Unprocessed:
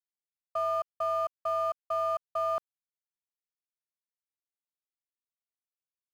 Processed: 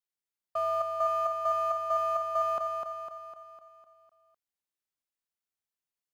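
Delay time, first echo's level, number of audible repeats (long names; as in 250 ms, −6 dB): 252 ms, −4.5 dB, 6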